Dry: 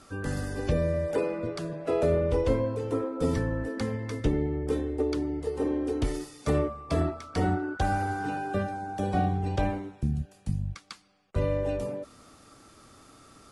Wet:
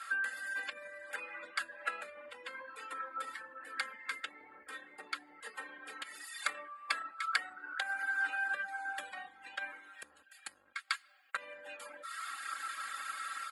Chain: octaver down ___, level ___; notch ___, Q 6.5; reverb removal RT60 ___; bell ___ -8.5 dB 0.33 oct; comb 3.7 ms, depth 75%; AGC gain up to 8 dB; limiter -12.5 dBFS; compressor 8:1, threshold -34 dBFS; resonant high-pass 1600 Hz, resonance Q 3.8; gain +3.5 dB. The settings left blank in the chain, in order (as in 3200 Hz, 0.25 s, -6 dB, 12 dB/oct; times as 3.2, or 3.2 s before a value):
1 oct, +3 dB, 6000 Hz, 0.8 s, 5600 Hz